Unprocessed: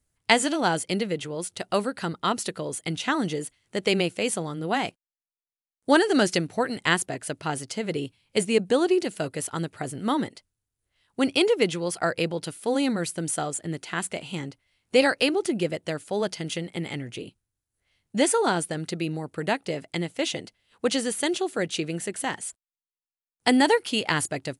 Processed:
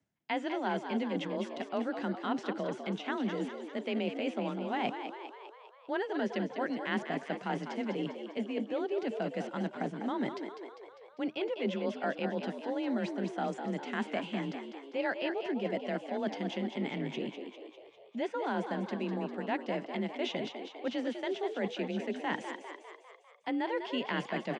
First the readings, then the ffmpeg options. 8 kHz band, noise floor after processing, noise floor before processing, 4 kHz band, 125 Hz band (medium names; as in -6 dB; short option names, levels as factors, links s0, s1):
under -25 dB, -56 dBFS, under -85 dBFS, -13.5 dB, -9.5 dB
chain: -filter_complex "[0:a]acrossover=split=4200[s0][s1];[s1]acompressor=threshold=0.00708:ratio=4:attack=1:release=60[s2];[s0][s2]amix=inputs=2:normalize=0,tiltshelf=f=1300:g=3.5,areverse,acompressor=threshold=0.0224:ratio=6,areverse,afreqshift=31,highpass=210,equalizer=f=220:t=q:w=4:g=4,equalizer=f=330:t=q:w=4:g=-4,equalizer=f=470:t=q:w=4:g=-6,equalizer=f=1200:t=q:w=4:g=-5,equalizer=f=4400:t=q:w=4:g=-8,lowpass=f=5600:w=0.5412,lowpass=f=5600:w=1.3066,asplit=2[s3][s4];[s4]asplit=7[s5][s6][s7][s8][s9][s10][s11];[s5]adelay=200,afreqshift=52,volume=0.398[s12];[s6]adelay=400,afreqshift=104,volume=0.232[s13];[s7]adelay=600,afreqshift=156,volume=0.133[s14];[s8]adelay=800,afreqshift=208,volume=0.0776[s15];[s9]adelay=1000,afreqshift=260,volume=0.0452[s16];[s10]adelay=1200,afreqshift=312,volume=0.026[s17];[s11]adelay=1400,afreqshift=364,volume=0.0151[s18];[s12][s13][s14][s15][s16][s17][s18]amix=inputs=7:normalize=0[s19];[s3][s19]amix=inputs=2:normalize=0,volume=1.5"